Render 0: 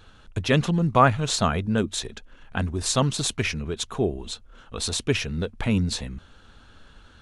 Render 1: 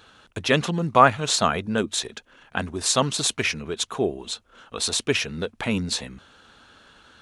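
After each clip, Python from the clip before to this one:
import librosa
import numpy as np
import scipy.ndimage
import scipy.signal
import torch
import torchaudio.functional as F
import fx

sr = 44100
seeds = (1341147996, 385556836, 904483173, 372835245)

y = fx.highpass(x, sr, hz=350.0, slope=6)
y = y * librosa.db_to_amplitude(3.5)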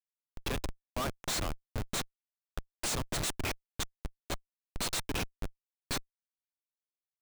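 y = F.preemphasis(torch.from_numpy(x), 0.8).numpy()
y = fx.schmitt(y, sr, flips_db=-28.5)
y = y * librosa.db_to_amplitude(1.5)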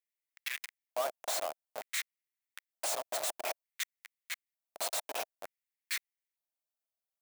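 y = fx.high_shelf(x, sr, hz=8400.0, db=10.0)
y = fx.filter_lfo_highpass(y, sr, shape='square', hz=0.55, low_hz=650.0, high_hz=2000.0, q=4.8)
y = y * librosa.db_to_amplitude(-5.5)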